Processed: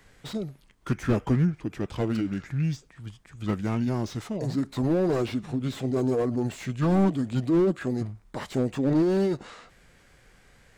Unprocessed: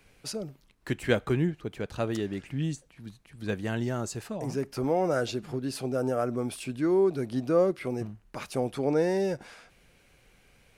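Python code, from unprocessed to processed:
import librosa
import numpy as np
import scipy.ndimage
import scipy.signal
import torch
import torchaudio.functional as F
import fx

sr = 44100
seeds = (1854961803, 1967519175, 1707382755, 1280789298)

y = fx.formant_shift(x, sr, semitones=-4)
y = fx.slew_limit(y, sr, full_power_hz=26.0)
y = F.gain(torch.from_numpy(y), 4.0).numpy()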